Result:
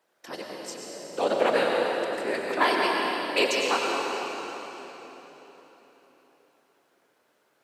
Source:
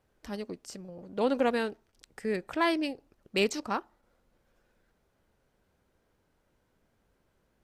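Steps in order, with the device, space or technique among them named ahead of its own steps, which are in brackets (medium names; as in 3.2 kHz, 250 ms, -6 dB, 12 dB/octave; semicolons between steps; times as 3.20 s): whispering ghost (whisper effect; high-pass 480 Hz 12 dB/octave; reverberation RT60 4.1 s, pre-delay 89 ms, DRR -1.5 dB); trim +5 dB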